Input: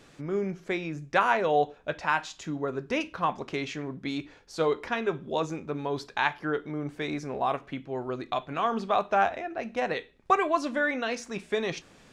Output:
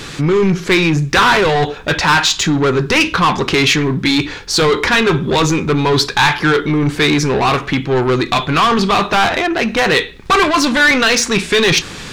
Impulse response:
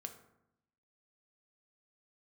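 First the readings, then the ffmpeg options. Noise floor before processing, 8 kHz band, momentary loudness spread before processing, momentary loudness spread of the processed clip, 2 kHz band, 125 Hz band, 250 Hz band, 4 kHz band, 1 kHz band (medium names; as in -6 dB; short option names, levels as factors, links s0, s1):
-56 dBFS, +26.5 dB, 10 LU, 5 LU, +18.0 dB, +21.5 dB, +18.0 dB, +24.5 dB, +12.5 dB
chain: -af "apsyclip=21.1,acontrast=60,equalizer=f=250:t=o:w=0.67:g=-5,equalizer=f=630:t=o:w=0.67:g=-10,equalizer=f=4000:t=o:w=0.67:g=4,volume=0.531"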